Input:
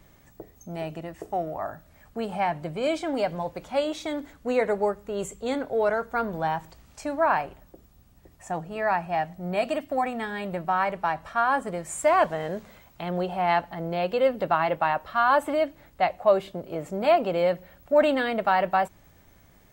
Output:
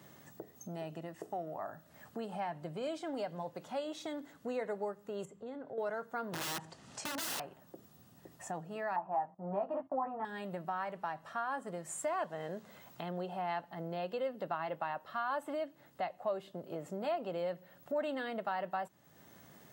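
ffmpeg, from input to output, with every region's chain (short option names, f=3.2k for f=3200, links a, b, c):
-filter_complex "[0:a]asettb=1/sr,asplit=3[a][b][c];[a]atrim=end=5.254[d];[b]atrim=start=5.25:end=5.78,asetpts=PTS-STARTPTS,afade=t=in:d=0.004:c=qsin,afade=t=out:st=0.526:d=0.004:c=qsin,lowpass=f=1.1k:p=1,acompressor=threshold=-42dB:ratio=2:attack=3.2:release=140:knee=1:detection=peak[e];[c]atrim=start=5.776[f];[d][e]acrossfade=d=0.004:c1=hsin:c2=qsin[g];[g][f]acrossfade=d=0.004:c1=qsin:c2=hsin,asettb=1/sr,asplit=3[h][i][j];[h]atrim=end=6.324[k];[i]atrim=start=6.32:end=7.4,asetpts=PTS-STARTPTS,afade=t=in:d=0.004:c=qsin,afade=t=out:st=1.076:d=0.004:c=qsin,lowpass=f=9.4k:w=0.5412,lowpass=f=9.4k:w=1.3066,acontrast=37,aeval=exprs='(mod(12.6*val(0)+1,2)-1)/12.6':c=same[l];[j]atrim=start=7.396[m];[k][l]acrossfade=d=0.004:c1=hsin:c2=qsin[n];[n][m]acrossfade=d=0.004:c1=qsin:c2=hsin,asettb=1/sr,asplit=3[o][p][q];[o]atrim=end=8.964[r];[p]atrim=start=8.96:end=10.25,asetpts=PTS-STARTPTS,afade=t=in:d=0.004:c=qsin,afade=t=out:st=1.286:d=0.004:c=qsin,asplit=2[s][t];[t]adelay=15,volume=-3dB[u];[s][u]amix=inputs=2:normalize=0,atrim=end_sample=56889,agate=range=-15dB:threshold=-44dB:ratio=16:release=100:detection=peak,lowpass=f=980:t=q:w=3.4[v];[q]atrim=start=10.246[w];[r][v]acrossfade=d=0.004:c1=hsin:c2=qsin[x];[x][w]acrossfade=d=0.004:c1=qsin:c2=hsin,acompressor=threshold=-48dB:ratio=2,highpass=f=120:w=0.5412,highpass=f=120:w=1.3066,bandreject=f=2.3k:w=8.3,volume=1dB"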